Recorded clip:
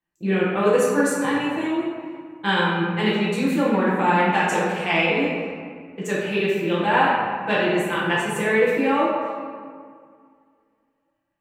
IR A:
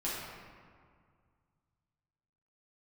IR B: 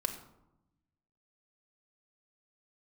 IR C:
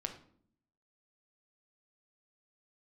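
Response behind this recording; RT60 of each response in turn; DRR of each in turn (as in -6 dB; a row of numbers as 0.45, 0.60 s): A; 2.0, 0.90, 0.60 s; -9.0, 4.5, 4.0 dB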